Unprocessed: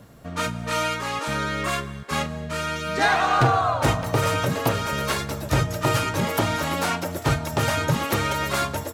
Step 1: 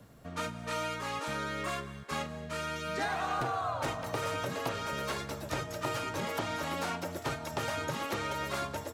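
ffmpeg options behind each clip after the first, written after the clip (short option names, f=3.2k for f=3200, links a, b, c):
-filter_complex "[0:a]acrossover=split=240|990|8000[a][b][c][d];[a]acompressor=threshold=-36dB:ratio=4[e];[b]acompressor=threshold=-27dB:ratio=4[f];[c]acompressor=threshold=-29dB:ratio=4[g];[d]acompressor=threshold=-47dB:ratio=4[h];[e][f][g][h]amix=inputs=4:normalize=0,volume=-7.5dB"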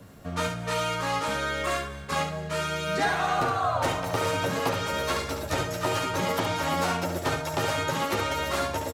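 -af "aecho=1:1:11|70:0.631|0.531,volume=5.5dB"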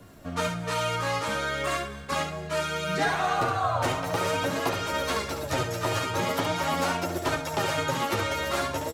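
-af "flanger=delay=2.8:depth=6.4:regen=48:speed=0.42:shape=sinusoidal,volume=4dB"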